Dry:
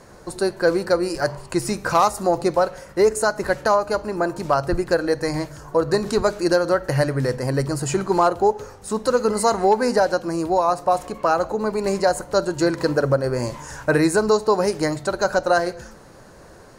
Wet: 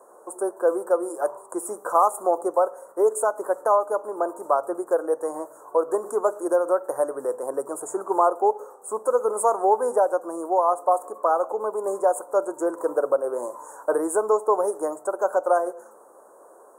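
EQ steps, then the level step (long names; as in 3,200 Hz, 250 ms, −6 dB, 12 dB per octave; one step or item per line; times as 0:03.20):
high-pass filter 410 Hz 24 dB per octave
elliptic band-stop filter 1,200–8,200 Hz, stop band 80 dB
parametric band 3,300 Hz −5 dB 1.5 octaves
0.0 dB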